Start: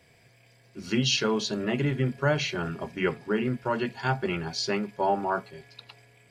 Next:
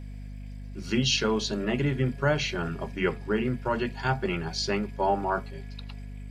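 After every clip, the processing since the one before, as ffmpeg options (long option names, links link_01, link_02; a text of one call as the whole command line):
ffmpeg -i in.wav -af "aeval=exprs='val(0)+0.0126*(sin(2*PI*50*n/s)+sin(2*PI*2*50*n/s)/2+sin(2*PI*3*50*n/s)/3+sin(2*PI*4*50*n/s)/4+sin(2*PI*5*50*n/s)/5)':channel_layout=same" out.wav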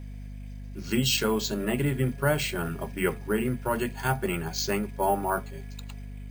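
ffmpeg -i in.wav -af "acrusher=samples=4:mix=1:aa=0.000001" out.wav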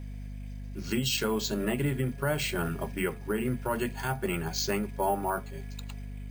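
ffmpeg -i in.wav -af "alimiter=limit=-18.5dB:level=0:latency=1:release=268" out.wav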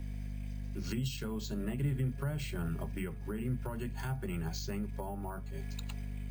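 ffmpeg -i in.wav -filter_complex "[0:a]acrossover=split=190[link_01][link_02];[link_02]acompressor=threshold=-41dB:ratio=10[link_03];[link_01][link_03]amix=inputs=2:normalize=0" out.wav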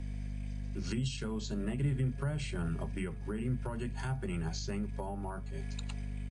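ffmpeg -i in.wav -af "aresample=22050,aresample=44100,volume=1dB" out.wav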